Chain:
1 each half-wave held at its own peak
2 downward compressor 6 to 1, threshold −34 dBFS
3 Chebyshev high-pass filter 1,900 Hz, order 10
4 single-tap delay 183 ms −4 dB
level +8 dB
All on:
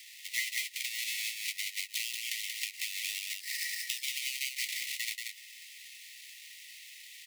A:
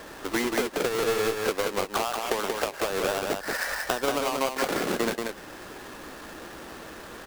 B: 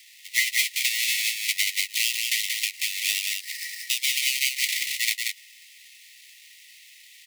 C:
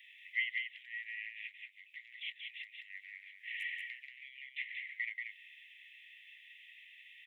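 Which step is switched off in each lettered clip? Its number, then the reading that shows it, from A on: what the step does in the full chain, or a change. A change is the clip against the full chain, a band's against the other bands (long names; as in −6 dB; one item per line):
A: 3, change in crest factor −3.5 dB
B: 2, change in momentary loudness spread −8 LU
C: 1, distortion level −5 dB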